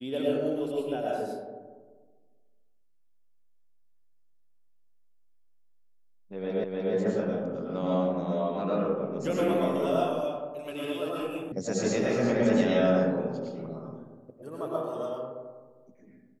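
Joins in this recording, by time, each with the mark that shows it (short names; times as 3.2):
6.64 repeat of the last 0.3 s
11.52 sound cut off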